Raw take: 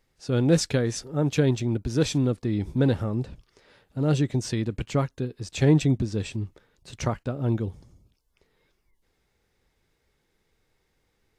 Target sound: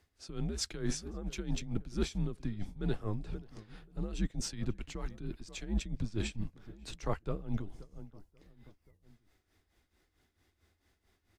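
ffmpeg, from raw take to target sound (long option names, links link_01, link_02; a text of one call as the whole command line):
ffmpeg -i in.wav -filter_complex "[0:a]afreqshift=-100,asplit=2[link_01][link_02];[link_02]adelay=532,lowpass=frequency=1500:poles=1,volume=-21dB,asplit=2[link_03][link_04];[link_04]adelay=532,lowpass=frequency=1500:poles=1,volume=0.43,asplit=2[link_05][link_06];[link_06]adelay=532,lowpass=frequency=1500:poles=1,volume=0.43[link_07];[link_01][link_03][link_05][link_07]amix=inputs=4:normalize=0,areverse,acompressor=threshold=-28dB:ratio=10,areverse,tremolo=f=4.5:d=0.75,volume=1dB" out.wav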